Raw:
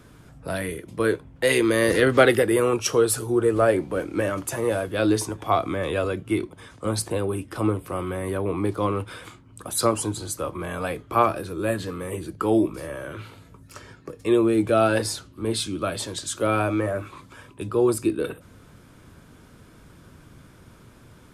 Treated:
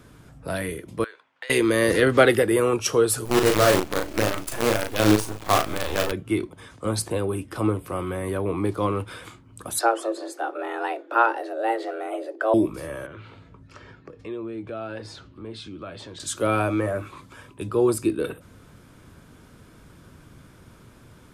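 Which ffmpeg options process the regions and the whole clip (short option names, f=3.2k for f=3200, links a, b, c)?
-filter_complex "[0:a]asettb=1/sr,asplit=3[a][b][c];[a]atrim=end=1.044[d];[b]atrim=start=1.04:end=1.5,asetpts=PTS-STARTPTS,afade=t=in:d=0.004:c=qsin,afade=t=out:st=0.456:d=0.004:c=qsin,acompressor=threshold=-28dB:ratio=12:attack=3.2:release=140:knee=1:detection=peak,asuperpass=centerf=2300:order=4:qfactor=0.55[e];[c]atrim=start=1.496[f];[d][e]acrossfade=d=0.004:c1=hsin:c2=qsin[g];[g][f]acrossfade=d=0.004:c1=qsin:c2=hsin,asettb=1/sr,asplit=3[h][i][j];[h]atrim=end=3.254[k];[i]atrim=start=3.25:end=6.12,asetpts=PTS-STARTPTS,afade=t=in:d=0.004:c=qsin,afade=t=out:st=2.866:d=0.004:c=qsin,acrusher=bits=4:dc=4:mix=0:aa=0.000001,asplit=2[l][m];[m]adelay=38,volume=-5dB[n];[l][n]amix=inputs=2:normalize=0,atrim=end_sample=126567[o];[j]atrim=start=6.116[p];[k][o]acrossfade=d=0.004:c1=hsin:c2=qsin[q];[q][p]acrossfade=d=0.004:c1=qsin:c2=hsin,asettb=1/sr,asplit=3[r][s][t];[r]atrim=end=9.794[u];[s]atrim=start=9.79:end=12.54,asetpts=PTS-STARTPTS,afade=t=in:d=0.004:c=qsin,afade=t=out:st=2.746:d=0.004:c=qsin,aemphasis=mode=reproduction:type=75fm,afreqshift=230[v];[t]atrim=start=12.536[w];[u][v]acrossfade=d=0.004:c1=hsin:c2=qsin[x];[x][w]acrossfade=d=0.004:c1=qsin:c2=hsin,asettb=1/sr,asplit=3[y][z][aa];[y]atrim=end=13.064[ab];[z]atrim=start=13.06:end=16.2,asetpts=PTS-STARTPTS,afade=t=in:d=0.004:c=qsin,afade=t=out:st=3.136:d=0.004:c=qsin,lowpass=3.7k,acompressor=threshold=-41dB:ratio=2:attack=3.2:release=140:knee=1:detection=peak[ac];[aa]atrim=start=16.196[ad];[ab][ac]acrossfade=d=0.004:c1=hsin:c2=qsin[ae];[ae][ad]acrossfade=d=0.004:c1=qsin:c2=hsin"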